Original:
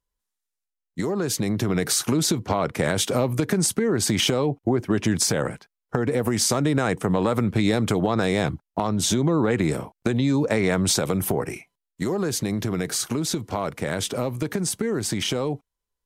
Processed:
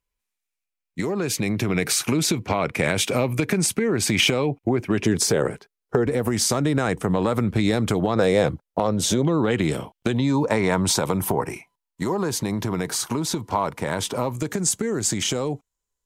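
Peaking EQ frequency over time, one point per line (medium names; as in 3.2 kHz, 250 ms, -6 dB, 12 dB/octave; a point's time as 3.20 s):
peaking EQ +11 dB 0.38 oct
2.4 kHz
from 5.03 s 410 Hz
from 6.06 s 62 Hz
from 8.15 s 510 Hz
from 9.25 s 3.1 kHz
from 10.15 s 950 Hz
from 14.32 s 7.1 kHz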